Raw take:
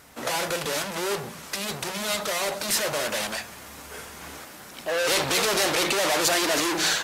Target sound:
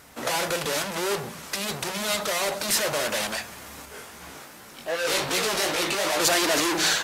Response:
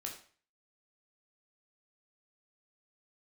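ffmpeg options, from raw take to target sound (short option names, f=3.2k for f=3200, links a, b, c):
-filter_complex "[0:a]asettb=1/sr,asplit=3[a][b][c];[a]atrim=end=3.854[d];[b]atrim=start=3.85:end=6.2,asetpts=PTS-STARTPTS,afade=t=in:d=0.004:c=qsin,afade=t=out:st=2.346:d=0.004:c=qsin,flanger=delay=16.5:depth=5:speed=2.6[e];[c]atrim=start=6.196[f];[d][e]acrossfade=d=0.004:c1=hsin:c2=qsin[g];[g][f]acrossfade=d=0.004:c1=qsin:c2=hsin,volume=1dB"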